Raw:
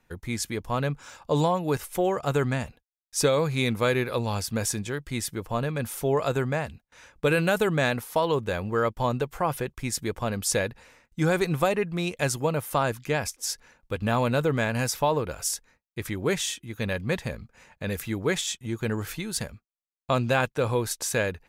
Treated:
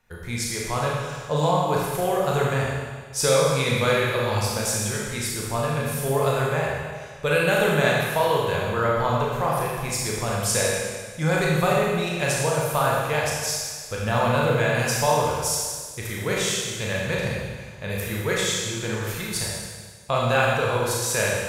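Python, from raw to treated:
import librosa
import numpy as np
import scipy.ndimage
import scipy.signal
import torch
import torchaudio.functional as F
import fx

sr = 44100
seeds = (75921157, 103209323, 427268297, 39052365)

y = fx.peak_eq(x, sr, hz=280.0, db=-11.0, octaves=0.69)
y = fx.rev_schroeder(y, sr, rt60_s=1.6, comb_ms=26, drr_db=-4.0)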